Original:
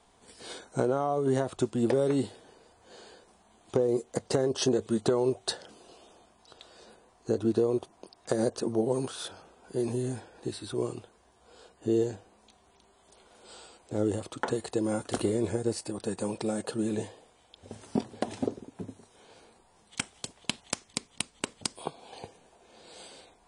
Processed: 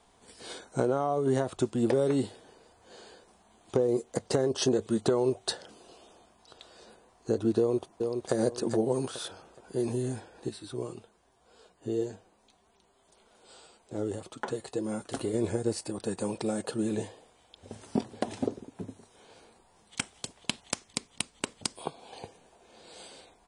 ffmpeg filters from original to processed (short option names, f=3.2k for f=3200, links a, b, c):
-filter_complex "[0:a]asplit=2[a][b];[b]afade=t=in:st=7.58:d=0.01,afade=t=out:st=8.34:d=0.01,aecho=0:1:420|840|1260|1680:0.562341|0.168702|0.0506107|0.0151832[c];[a][c]amix=inputs=2:normalize=0,asettb=1/sr,asplit=3[d][e][f];[d]atrim=end=10.494[g];[e]atrim=start=10.49:end=15.34,asetpts=PTS-STARTPTS,afade=t=in:d=0.004:c=qsin,afade=t=out:st=4.846:d=0.004:c=qsin,flanger=delay=4.4:depth=3.2:regen=55:speed=1.8:shape=sinusoidal[h];[f]atrim=start=15.336[i];[g][h]acrossfade=d=0.004:c1=hsin:c2=qsin[j];[j][i]acrossfade=d=0.004:c1=qsin:c2=hsin"